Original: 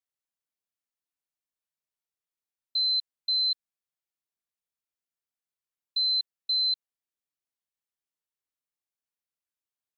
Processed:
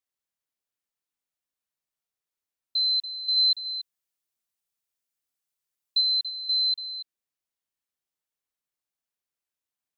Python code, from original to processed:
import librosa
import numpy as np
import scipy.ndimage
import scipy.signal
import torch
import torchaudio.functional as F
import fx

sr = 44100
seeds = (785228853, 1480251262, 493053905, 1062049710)

y = fx.high_shelf(x, sr, hz=3900.0, db=6.5, at=(3.36, 6.0), fade=0.02)
y = y + 10.0 ** (-11.5 / 20.0) * np.pad(y, (int(285 * sr / 1000.0), 0))[:len(y)]
y = y * librosa.db_to_amplitude(1.5)